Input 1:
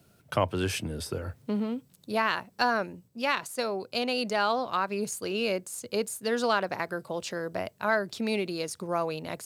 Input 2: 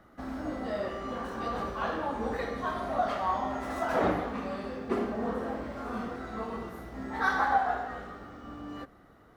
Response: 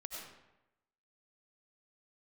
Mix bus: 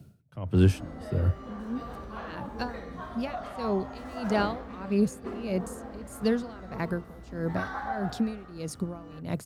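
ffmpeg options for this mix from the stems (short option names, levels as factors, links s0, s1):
-filter_complex "[0:a]equalizer=f=150:t=o:w=2.7:g=13,aeval=exprs='val(0)*pow(10,-24*(0.5-0.5*cos(2*PI*1.6*n/s))/20)':c=same,volume=0.75[s0];[1:a]adelay=350,volume=0.376[s1];[s0][s1]amix=inputs=2:normalize=0,lowshelf=f=120:g=10.5"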